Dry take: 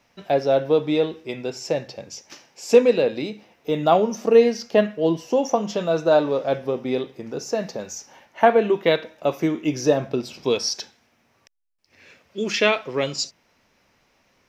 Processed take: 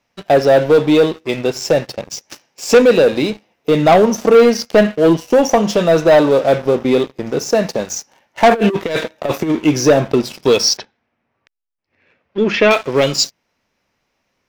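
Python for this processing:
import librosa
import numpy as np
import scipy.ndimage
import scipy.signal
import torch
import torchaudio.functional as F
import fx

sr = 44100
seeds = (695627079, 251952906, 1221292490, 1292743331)

y = fx.leveller(x, sr, passes=3)
y = fx.over_compress(y, sr, threshold_db=-14.0, ratio=-0.5, at=(8.51, 9.55))
y = fx.lowpass(y, sr, hz=2400.0, slope=12, at=(10.77, 12.71))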